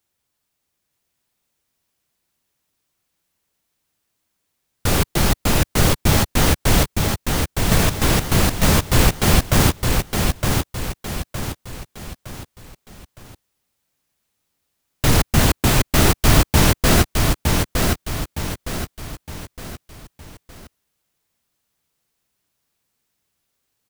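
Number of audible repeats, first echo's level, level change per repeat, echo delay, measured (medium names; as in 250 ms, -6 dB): 4, -3.5 dB, -7.5 dB, 913 ms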